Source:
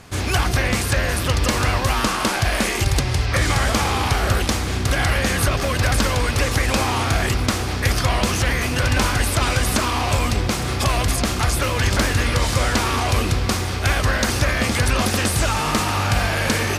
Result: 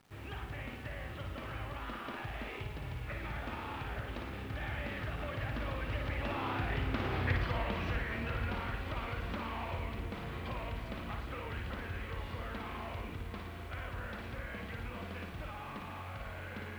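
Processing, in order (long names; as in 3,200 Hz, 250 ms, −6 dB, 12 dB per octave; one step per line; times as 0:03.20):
source passing by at 0:07.24, 25 m/s, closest 5.2 metres
low-pass filter 3,100 Hz 24 dB per octave
downward compressor 3 to 1, threshold −47 dBFS, peak gain reduction 23 dB
bit-depth reduction 12 bits, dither none
flutter between parallel walls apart 9.7 metres, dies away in 0.59 s
level +8 dB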